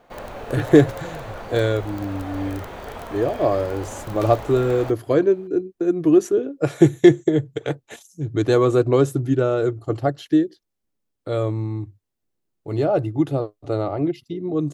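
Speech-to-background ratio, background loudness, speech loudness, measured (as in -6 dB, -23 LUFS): 14.0 dB, -35.0 LUFS, -21.0 LUFS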